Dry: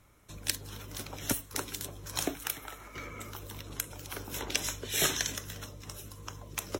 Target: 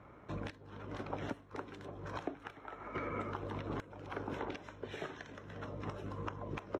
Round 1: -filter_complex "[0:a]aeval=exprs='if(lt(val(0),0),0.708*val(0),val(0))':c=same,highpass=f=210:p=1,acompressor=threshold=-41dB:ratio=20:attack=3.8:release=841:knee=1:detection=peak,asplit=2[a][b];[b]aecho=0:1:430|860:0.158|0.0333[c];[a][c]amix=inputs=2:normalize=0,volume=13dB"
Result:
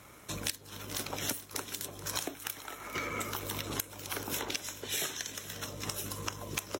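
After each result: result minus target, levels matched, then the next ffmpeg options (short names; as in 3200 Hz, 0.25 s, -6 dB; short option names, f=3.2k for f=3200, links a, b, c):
echo-to-direct +11.5 dB; 1000 Hz band -5.5 dB
-filter_complex "[0:a]aeval=exprs='if(lt(val(0),0),0.708*val(0),val(0))':c=same,highpass=f=210:p=1,acompressor=threshold=-41dB:ratio=20:attack=3.8:release=841:knee=1:detection=peak,asplit=2[a][b];[b]aecho=0:1:430:0.0422[c];[a][c]amix=inputs=2:normalize=0,volume=13dB"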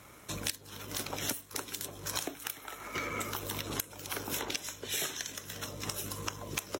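1000 Hz band -5.5 dB
-filter_complex "[0:a]aeval=exprs='if(lt(val(0),0),0.708*val(0),val(0))':c=same,highpass=f=210:p=1,acompressor=threshold=-41dB:ratio=20:attack=3.8:release=841:knee=1:detection=peak,lowpass=1.3k,asplit=2[a][b];[b]aecho=0:1:430:0.0422[c];[a][c]amix=inputs=2:normalize=0,volume=13dB"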